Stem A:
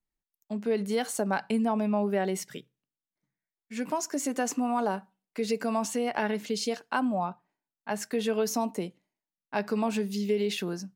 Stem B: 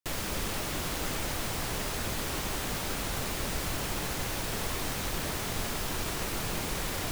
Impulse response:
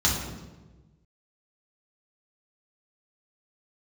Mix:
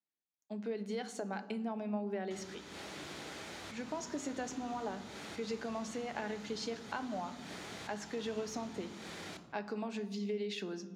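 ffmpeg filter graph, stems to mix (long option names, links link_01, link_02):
-filter_complex "[0:a]acompressor=threshold=-28dB:ratio=6,equalizer=frequency=9800:width_type=o:width=0.74:gain=-7,volume=-6.5dB,asplit=3[link_01][link_02][link_03];[link_02]volume=-23.5dB[link_04];[1:a]acrossover=split=540|4500[link_05][link_06][link_07];[link_05]acompressor=threshold=-46dB:ratio=4[link_08];[link_06]acompressor=threshold=-48dB:ratio=4[link_09];[link_07]acompressor=threshold=-53dB:ratio=4[link_10];[link_08][link_09][link_10]amix=inputs=3:normalize=0,adelay=2250,volume=-1dB,asplit=2[link_11][link_12];[link_12]volume=-20.5dB[link_13];[link_03]apad=whole_len=413180[link_14];[link_11][link_14]sidechaincompress=threshold=-59dB:ratio=8:attack=8.1:release=156[link_15];[2:a]atrim=start_sample=2205[link_16];[link_04][link_13]amix=inputs=2:normalize=0[link_17];[link_17][link_16]afir=irnorm=-1:irlink=0[link_18];[link_01][link_15][link_18]amix=inputs=3:normalize=0,highpass=210,lowpass=7200"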